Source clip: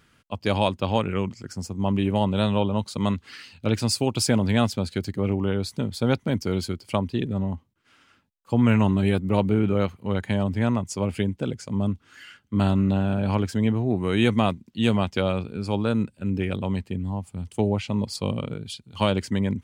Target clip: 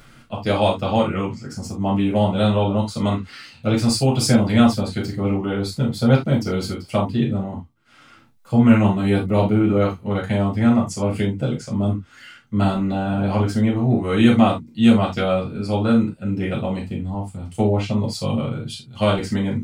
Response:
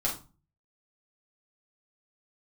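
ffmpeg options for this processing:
-filter_complex "[0:a]acompressor=mode=upward:threshold=-44dB:ratio=2.5[a];[1:a]atrim=start_sample=2205,atrim=end_sample=3969[b];[a][b]afir=irnorm=-1:irlink=0,volume=-2.5dB"

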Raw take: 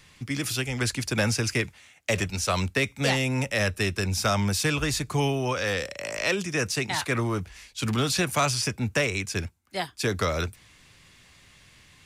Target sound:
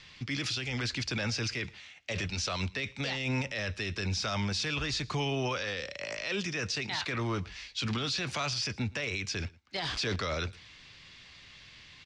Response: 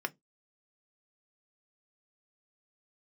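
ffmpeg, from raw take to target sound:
-filter_complex "[0:a]asettb=1/sr,asplit=3[a][b][c];[a]atrim=end=9.764[d];[b]atrim=start=9.76:end=10.16,asetpts=PTS-STARTPTS,afade=t=in:d=0.004:c=qsin,afade=t=out:st=0.396:d=0.004:c=qsin,aeval=exprs='val(0)+0.5*0.0282*sgn(val(0))':c=same[e];[c]atrim=start=10.156[f];[d][e]acrossfade=d=0.004:c1=hsin:c2=qsin[g];[g][f]acrossfade=d=0.004:c1=qsin:c2=hsin,lowpass=f=4.8k:w=0.5412,lowpass=f=4.8k:w=1.3066,highshelf=f=2.5k:g=12,alimiter=limit=-21.5dB:level=0:latency=1:release=29,asplit=2[h][i];[i]aecho=0:1:113:0.0668[j];[h][j]amix=inputs=2:normalize=0,volume=-2.5dB"

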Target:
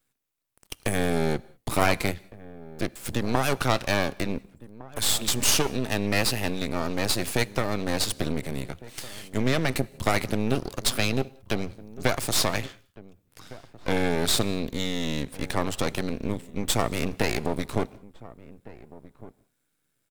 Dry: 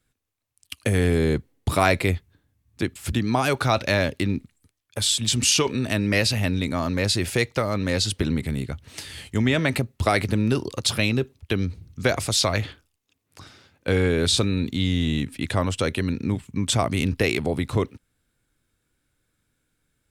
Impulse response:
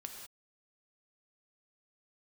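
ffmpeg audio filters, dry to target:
-filter_complex "[0:a]highpass=130,highshelf=f=12k:g=10.5,aeval=exprs='max(val(0),0)':c=same,asplit=2[a][b];[b]adelay=1458,volume=-18dB,highshelf=f=4k:g=-32.8[c];[a][c]amix=inputs=2:normalize=0,asplit=2[d][e];[1:a]atrim=start_sample=2205[f];[e][f]afir=irnorm=-1:irlink=0,volume=-14dB[g];[d][g]amix=inputs=2:normalize=0"

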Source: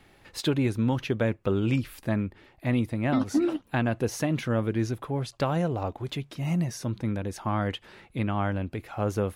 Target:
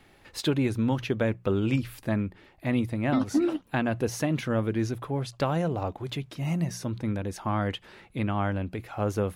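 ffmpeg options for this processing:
-af "bandreject=f=60:t=h:w=6,bandreject=f=120:t=h:w=6,bandreject=f=180:t=h:w=6"

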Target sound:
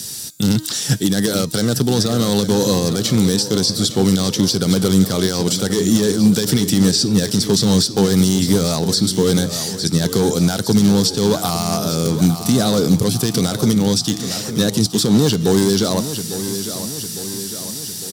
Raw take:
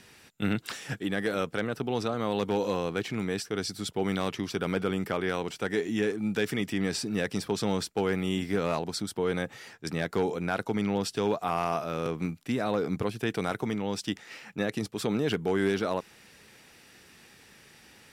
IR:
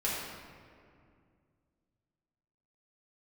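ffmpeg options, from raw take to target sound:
-filter_complex "[0:a]bass=f=250:g=4,treble=f=4k:g=1,acrossover=split=4200[a][b];[b]acompressor=threshold=-54dB:ratio=6[c];[a][c]amix=inputs=2:normalize=0,volume=21.5dB,asoftclip=hard,volume=-21.5dB,asplit=2[d][e];[e]aecho=0:1:854|1708|2562|3416|4270|5124:0.251|0.138|0.076|0.0418|0.023|0.0126[f];[d][f]amix=inputs=2:normalize=0,aexciter=amount=14.1:drive=4.4:freq=3.7k,bandreject=f=312.6:t=h:w=4,bandreject=f=625.2:t=h:w=4,bandreject=f=937.8:t=h:w=4,bandreject=f=1.2504k:t=h:w=4,bandreject=f=1.563k:t=h:w=4,bandreject=f=1.8756k:t=h:w=4,bandreject=f=2.1882k:t=h:w=4,bandreject=f=2.5008k:t=h:w=4,bandreject=f=2.8134k:t=h:w=4,bandreject=f=3.126k:t=h:w=4,bandreject=f=3.4386k:t=h:w=4,bandreject=f=3.7512k:t=h:w=4,bandreject=f=4.0638k:t=h:w=4,bandreject=f=4.3764k:t=h:w=4,bandreject=f=4.689k:t=h:w=4,bandreject=f=5.0016k:t=h:w=4,bandreject=f=5.3142k:t=h:w=4,bandreject=f=5.6268k:t=h:w=4,bandreject=f=5.9394k:t=h:w=4,bandreject=f=6.252k:t=h:w=4,bandreject=f=6.5646k:t=h:w=4,bandreject=f=6.8772k:t=h:w=4,bandreject=f=7.1898k:t=h:w=4,bandreject=f=7.5024k:t=h:w=4,bandreject=f=7.815k:t=h:w=4,bandreject=f=8.1276k:t=h:w=4,bandreject=f=8.4402k:t=h:w=4,bandreject=f=8.7528k:t=h:w=4,bandreject=f=9.0654k:t=h:w=4,bandreject=f=9.378k:t=h:w=4,bandreject=f=9.6906k:t=h:w=4,bandreject=f=10.0032k:t=h:w=4,bandreject=f=10.3158k:t=h:w=4,bandreject=f=10.6284k:t=h:w=4,bandreject=f=10.941k:t=h:w=4,alimiter=limit=-14.5dB:level=0:latency=1:release=87,highpass=100,lowshelf=f=320:g=11.5,volume=7.5dB"

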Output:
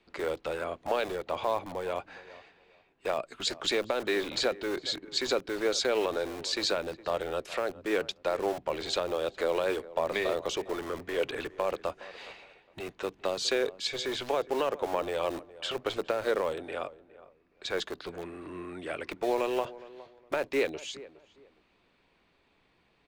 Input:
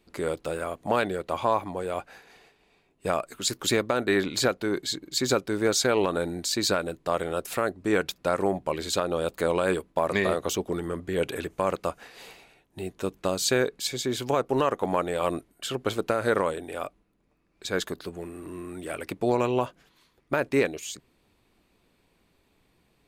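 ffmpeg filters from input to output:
-filter_complex "[0:a]lowpass=3.7k,lowshelf=f=440:g=-9.5,acrossover=split=270|700|2700[a][b][c][d];[a]aeval=exprs='(mod(150*val(0)+1,2)-1)/150':c=same[e];[c]acompressor=threshold=-42dB:ratio=6[f];[e][b][f][d]amix=inputs=4:normalize=0,asplit=2[g][h];[h]adelay=413,lowpass=f=1.4k:p=1,volume=-17.5dB,asplit=2[i][j];[j]adelay=413,lowpass=f=1.4k:p=1,volume=0.25[k];[g][i][k]amix=inputs=3:normalize=0,volume=3dB"

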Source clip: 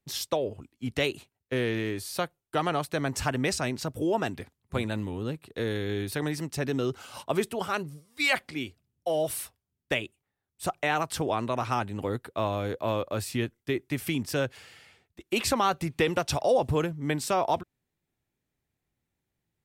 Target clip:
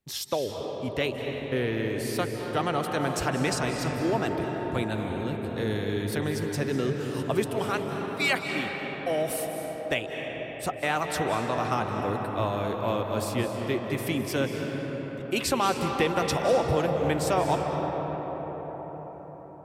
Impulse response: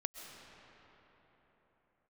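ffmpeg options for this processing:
-filter_complex "[0:a]asettb=1/sr,asplit=3[a][b][c];[a]atrim=end=0.934[d];[b]atrim=start=0.93:end=1.9,asetpts=PTS-STARTPTS,afade=t=in:d=0.004:c=qsin,afade=t=out:st=0.966:d=0.004:c=qsin,equalizer=f=7.3k:t=o:w=1.6:g=-7[e];[c]atrim=start=1.896[f];[d][e]acrossfade=d=0.004:c1=hsin:c2=qsin[g];[g][f]acrossfade=d=0.004:c1=qsin:c2=hsin[h];[1:a]atrim=start_sample=2205,asetrate=29988,aresample=44100[i];[h][i]afir=irnorm=-1:irlink=0"

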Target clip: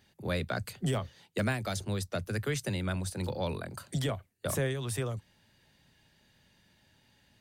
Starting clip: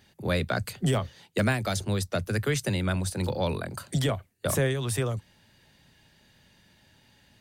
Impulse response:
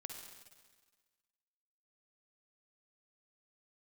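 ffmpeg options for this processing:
-af "volume=-5.5dB"

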